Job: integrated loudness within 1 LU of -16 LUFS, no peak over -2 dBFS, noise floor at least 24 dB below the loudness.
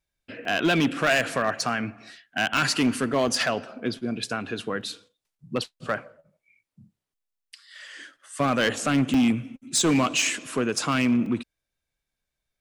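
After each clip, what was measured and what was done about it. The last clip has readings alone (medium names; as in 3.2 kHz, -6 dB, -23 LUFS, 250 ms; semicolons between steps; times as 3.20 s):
clipped samples 1.1%; clipping level -16.0 dBFS; dropouts 8; longest dropout 2.4 ms; loudness -25.0 LUFS; peak level -16.0 dBFS; loudness target -16.0 LUFS
-> clip repair -16 dBFS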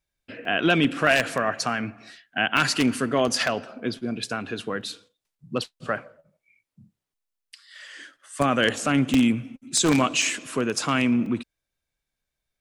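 clipped samples 0.0%; dropouts 8; longest dropout 2.4 ms
-> interpolate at 0.45/1.07/2.57/3.28/4.81/9.14/10.22/11.26 s, 2.4 ms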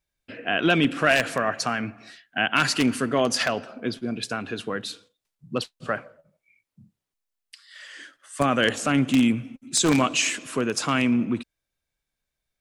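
dropouts 0; loudness -24.0 LUFS; peak level -7.0 dBFS; loudness target -16.0 LUFS
-> trim +8 dB; peak limiter -2 dBFS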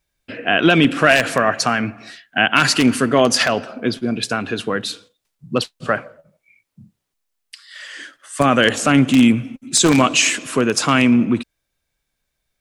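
loudness -16.5 LUFS; peak level -2.0 dBFS; noise floor -76 dBFS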